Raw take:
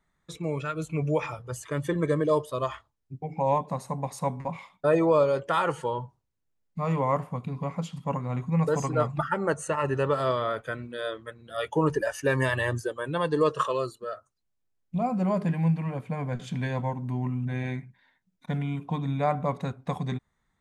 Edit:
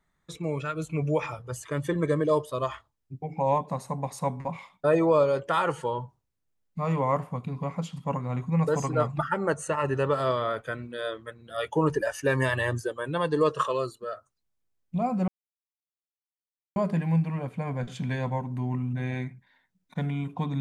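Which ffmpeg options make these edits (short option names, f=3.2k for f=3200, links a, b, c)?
-filter_complex "[0:a]asplit=2[a][b];[a]atrim=end=15.28,asetpts=PTS-STARTPTS,afade=t=out:st=15.276:d=0.004:c=hsin,apad=pad_dur=1.48[c];[b]atrim=start=15.28,asetpts=PTS-STARTPTS,afade=t=in:d=0.004:c=hsin[d];[c][d]concat=n=2:v=0:a=1"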